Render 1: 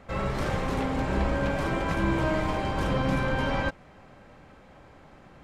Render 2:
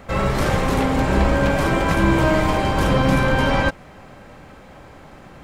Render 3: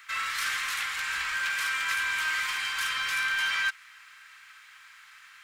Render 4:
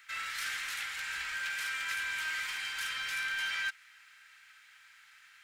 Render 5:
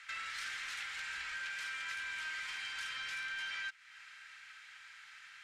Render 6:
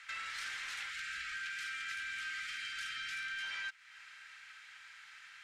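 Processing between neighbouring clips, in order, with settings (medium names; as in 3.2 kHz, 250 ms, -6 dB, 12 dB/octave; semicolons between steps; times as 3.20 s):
treble shelf 9.7 kHz +10.5 dB; trim +9 dB
inverse Chebyshev high-pass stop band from 720 Hz, stop band 40 dB; in parallel at -5 dB: overload inside the chain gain 31.5 dB; on the sum: trim -3 dB
peaking EQ 1.1 kHz -13 dB 0.22 oct; trim -6 dB
low-pass 7.5 kHz 12 dB/octave; compression 2.5:1, threshold -48 dBFS, peak gain reduction 11.5 dB; trim +4 dB
spectral selection erased 0.90–3.43 s, 360–1200 Hz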